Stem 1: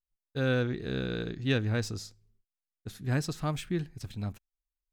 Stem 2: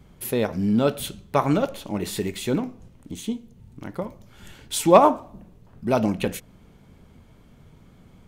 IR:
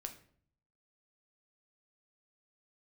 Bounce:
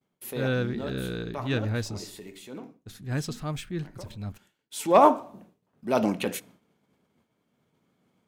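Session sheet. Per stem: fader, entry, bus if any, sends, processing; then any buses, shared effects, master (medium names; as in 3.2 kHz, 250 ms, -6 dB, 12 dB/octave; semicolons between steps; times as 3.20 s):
+1.0 dB, 0.00 s, no send, none
-1.0 dB, 0.00 s, send -12.5 dB, high-pass 210 Hz 12 dB/octave; auto duck -21 dB, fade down 0.85 s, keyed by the first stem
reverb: on, RT60 0.55 s, pre-delay 7 ms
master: expander -46 dBFS; transient shaper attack -6 dB, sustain 0 dB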